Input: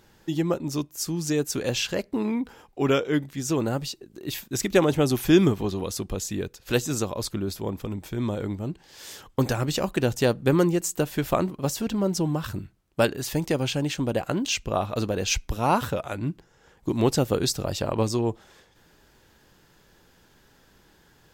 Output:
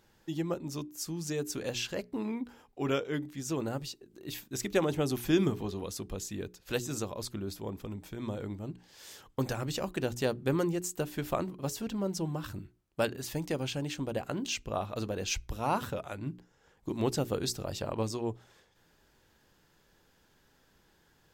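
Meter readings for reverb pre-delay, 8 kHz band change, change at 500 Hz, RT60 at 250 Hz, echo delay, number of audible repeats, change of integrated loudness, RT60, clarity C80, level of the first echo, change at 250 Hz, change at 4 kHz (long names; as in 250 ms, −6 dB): no reverb audible, −8.0 dB, −8.5 dB, no reverb audible, no echo audible, no echo audible, −8.5 dB, no reverb audible, no reverb audible, no echo audible, −9.0 dB, −8.0 dB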